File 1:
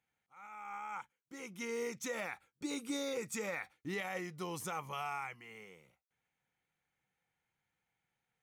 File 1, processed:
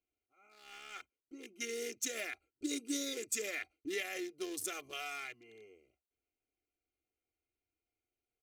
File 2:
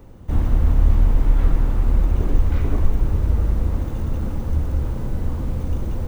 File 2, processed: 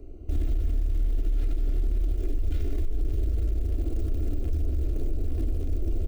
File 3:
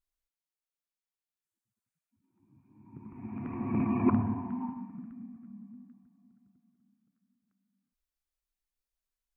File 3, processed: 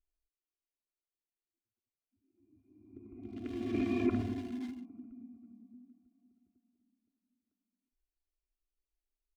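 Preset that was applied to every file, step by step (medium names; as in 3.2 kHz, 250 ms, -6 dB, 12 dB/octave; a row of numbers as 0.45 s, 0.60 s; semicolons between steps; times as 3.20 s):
local Wiener filter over 25 samples; compression, threshold -16 dBFS; treble shelf 2.2 kHz +10.5 dB; static phaser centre 390 Hz, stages 4; peak limiter -22.5 dBFS; comb 2.9 ms, depth 62%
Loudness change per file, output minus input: +1.5 LU, -8.0 LU, -4.0 LU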